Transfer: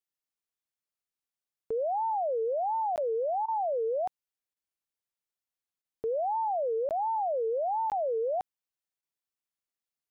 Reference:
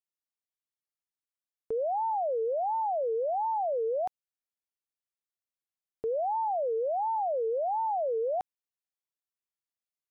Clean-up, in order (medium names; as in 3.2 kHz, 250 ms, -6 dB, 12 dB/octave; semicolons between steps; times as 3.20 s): interpolate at 2.96/6.89/7.90/9.01 s, 18 ms; interpolate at 3.46/4.54/5.82 s, 22 ms